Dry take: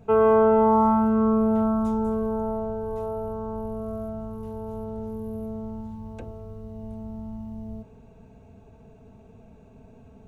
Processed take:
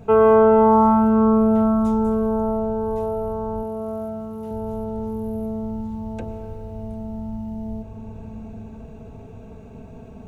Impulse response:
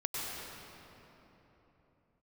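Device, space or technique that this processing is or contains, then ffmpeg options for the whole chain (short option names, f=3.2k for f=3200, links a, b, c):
ducked reverb: -filter_complex "[0:a]asplit=3[a][b][c];[1:a]atrim=start_sample=2205[d];[b][d]afir=irnorm=-1:irlink=0[e];[c]apad=whole_len=452995[f];[e][f]sidechaincompress=threshold=-39dB:ratio=8:attack=16:release=755,volume=-4dB[g];[a][g]amix=inputs=2:normalize=0,asettb=1/sr,asplit=3[h][i][j];[h]atrim=end=3.634[k];[i]atrim=start=3.63:end=4.51,asetpts=PTS-STARTPTS,afade=t=in:d=0.004:c=qsin,afade=t=out:st=0.876:d=0.004:c=qsin,highpass=f=200:p=1[l];[j]atrim=start=4.506[m];[k][l]acrossfade=d=0.004:c1=hsin:c2=qsin[n];[n][m]acrossfade=d=0.004:c1=qsin:c2=hsin,volume=4dB"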